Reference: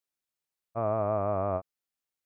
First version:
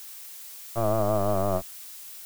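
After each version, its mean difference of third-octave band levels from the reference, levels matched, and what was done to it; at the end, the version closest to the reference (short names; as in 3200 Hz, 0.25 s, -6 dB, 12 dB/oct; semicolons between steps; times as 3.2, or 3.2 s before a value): 9.0 dB: octaver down 1 oct, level +3 dB; LPF 1600 Hz; crossover distortion -50 dBFS; added noise blue -46 dBFS; gain +3.5 dB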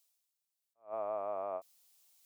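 6.5 dB: reverse; upward compressor, threshold -52 dBFS; reverse; HPF 910 Hz 12 dB/oct; bell 1600 Hz -15 dB 1.6 oct; attack slew limiter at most 250 dB/s; gain +3.5 dB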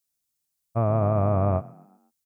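3.5 dB: tone controls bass +11 dB, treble +13 dB; limiter -21 dBFS, peak gain reduction 4.5 dB; on a send: frequency-shifting echo 0.123 s, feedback 46%, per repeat +34 Hz, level -14.5 dB; on the sum: upward expander 1.5:1, over -43 dBFS; gain +6.5 dB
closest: third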